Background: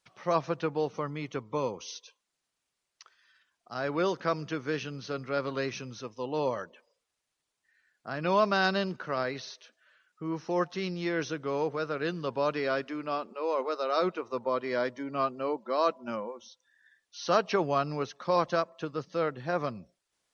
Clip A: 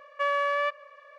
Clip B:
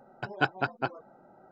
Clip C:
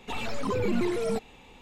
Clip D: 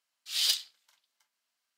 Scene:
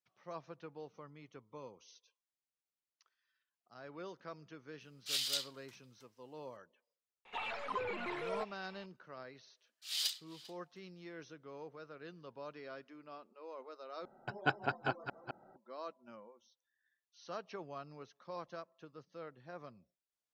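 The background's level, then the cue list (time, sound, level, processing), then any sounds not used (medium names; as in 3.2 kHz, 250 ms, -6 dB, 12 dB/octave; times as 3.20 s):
background -19 dB
4.80 s: add D -3 dB + compressor with a negative ratio -33 dBFS
7.25 s: add C -3 dB + three-band isolator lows -21 dB, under 580 Hz, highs -20 dB, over 3.5 kHz
9.56 s: add D -9 dB + echo from a far wall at 68 m, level -16 dB
14.05 s: replace with B -6.5 dB + chunks repeated in reverse 210 ms, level -7 dB
not used: A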